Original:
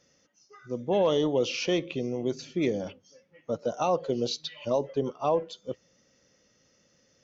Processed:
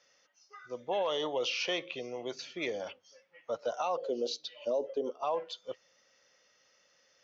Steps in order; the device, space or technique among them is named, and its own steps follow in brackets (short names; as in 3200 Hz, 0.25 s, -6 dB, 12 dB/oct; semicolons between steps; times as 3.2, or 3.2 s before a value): 3.97–5.23 graphic EQ 125/250/500/1000/2000/4000 Hz -11/+9/+7/-9/-11/-4 dB; DJ mixer with the lows and highs turned down (three-band isolator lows -21 dB, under 570 Hz, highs -17 dB, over 5800 Hz; limiter -26 dBFS, peak gain reduction 8 dB); gain +2.5 dB